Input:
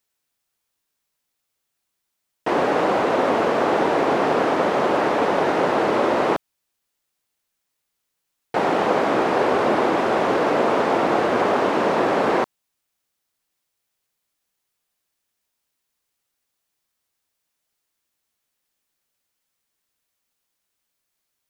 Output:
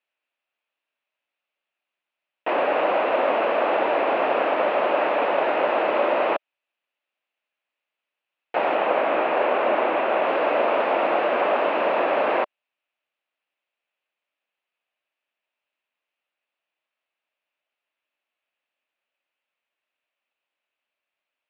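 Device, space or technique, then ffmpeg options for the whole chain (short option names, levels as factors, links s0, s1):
phone earpiece: -filter_complex "[0:a]highpass=380,equalizer=f=420:t=q:w=4:g=-4,equalizer=f=600:t=q:w=4:g=6,equalizer=f=2600:t=q:w=4:g=8,lowpass=f=3200:w=0.5412,lowpass=f=3200:w=1.3066,asettb=1/sr,asplit=3[s0][s1][s2];[s0]atrim=end=8.754[s3];[s1]atrim=start=8.75:end=10.25,asetpts=PTS-STARTPTS,afade=t=in:d=0.004:c=qsin,afade=t=out:st=1.496:d=0.004:c=qsin,acrossover=split=4300[s4][s5];[s5]acompressor=threshold=0.00158:ratio=4:attack=1:release=60[s6];[s4][s6]amix=inputs=2:normalize=0[s7];[s2]atrim=start=10.246[s8];[s3][s7]acrossfade=d=0.004:c1=hsin:c2=qsin[s9];[s9][s8]acrossfade=d=0.004:c1=qsin:c2=hsin,volume=0.75"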